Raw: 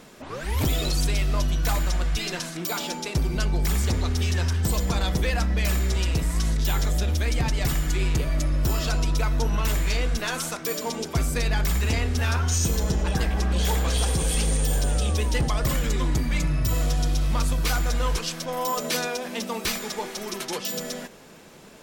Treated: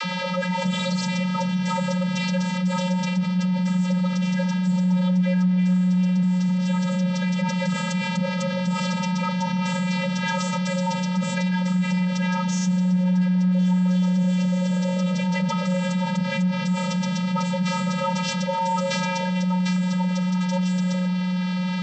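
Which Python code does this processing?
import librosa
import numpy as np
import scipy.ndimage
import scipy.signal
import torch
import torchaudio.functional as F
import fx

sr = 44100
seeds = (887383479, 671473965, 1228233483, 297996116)

y = fx.dmg_noise_band(x, sr, seeds[0], low_hz=680.0, high_hz=4600.0, level_db=-39.0)
y = fx.vocoder(y, sr, bands=32, carrier='square', carrier_hz=182.0)
y = fx.echo_wet_lowpass(y, sr, ms=264, feedback_pct=76, hz=550.0, wet_db=-9.0)
y = fx.env_flatten(y, sr, amount_pct=70)
y = F.gain(torch.from_numpy(y), -2.0).numpy()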